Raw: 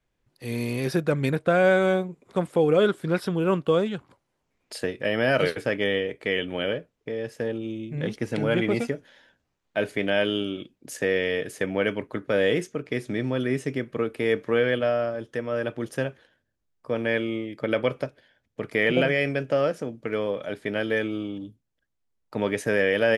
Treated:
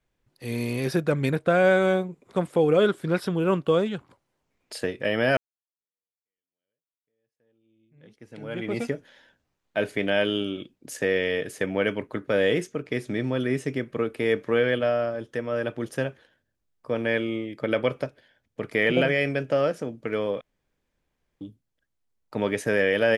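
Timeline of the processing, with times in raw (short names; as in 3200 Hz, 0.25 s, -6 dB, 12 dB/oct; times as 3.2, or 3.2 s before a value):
5.37–8.89 fade in exponential
20.41–21.41 room tone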